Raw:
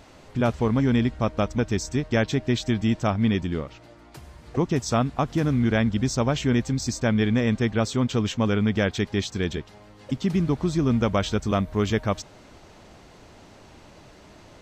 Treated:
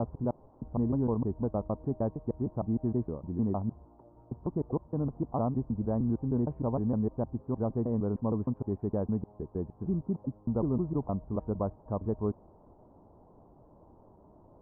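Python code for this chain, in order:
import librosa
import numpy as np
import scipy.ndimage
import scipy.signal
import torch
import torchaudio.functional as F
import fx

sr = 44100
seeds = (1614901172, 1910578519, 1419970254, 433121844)

y = fx.block_reorder(x, sr, ms=154.0, group=4)
y = scipy.signal.sosfilt(scipy.signal.ellip(4, 1.0, 70, 1000.0, 'lowpass', fs=sr, output='sos'), y)
y = F.gain(torch.from_numpy(y), -7.0).numpy()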